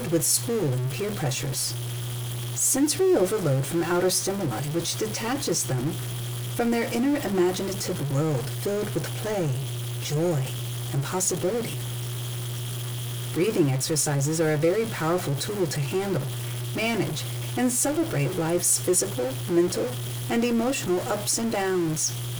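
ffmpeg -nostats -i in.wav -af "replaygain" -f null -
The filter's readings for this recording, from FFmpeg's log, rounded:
track_gain = +7.0 dB
track_peak = 0.238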